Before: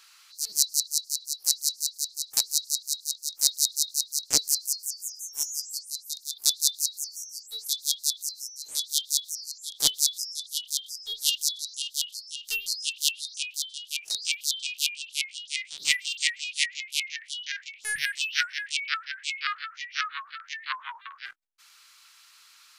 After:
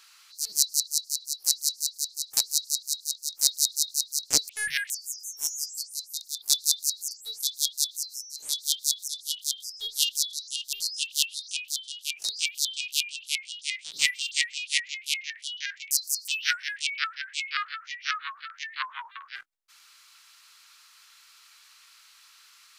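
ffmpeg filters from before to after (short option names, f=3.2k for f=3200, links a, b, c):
-filter_complex "[0:a]asplit=8[a][b][c][d][e][f][g][h];[a]atrim=end=4.492[i];[b]atrim=start=17.768:end=18.182[j];[c]atrim=start=4.858:end=7.072[k];[d]atrim=start=7.368:end=9.342[l];[e]atrim=start=10.338:end=11.992[m];[f]atrim=start=12.588:end=17.772[n];[g]atrim=start=4.488:end=4.862[o];[h]atrim=start=18.178[p];[i][j]acrossfade=d=0.004:c1=hsin:c2=hsin[q];[q][k]acrossfade=d=0.004:c1=hsin:c2=hsin[r];[r][l]acrossfade=d=0.004:c1=hsin:c2=hsin[s];[s][m]acrossfade=d=0.004:c1=hsin:c2=hsin[t];[t][n]acrossfade=d=0.004:c1=hsin:c2=hsin[u];[u][o]acrossfade=d=0.004:c1=hsin:c2=hsin[v];[v][p]acrossfade=d=0.004:c1=hsin:c2=hsin"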